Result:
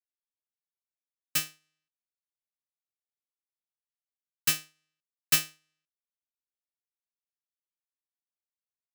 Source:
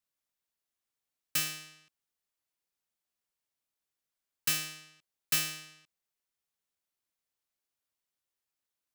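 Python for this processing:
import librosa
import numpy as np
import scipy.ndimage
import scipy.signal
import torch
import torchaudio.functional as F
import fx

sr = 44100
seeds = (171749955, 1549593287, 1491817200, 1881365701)

y = fx.upward_expand(x, sr, threshold_db=-47.0, expansion=2.5)
y = y * 10.0 ** (7.0 / 20.0)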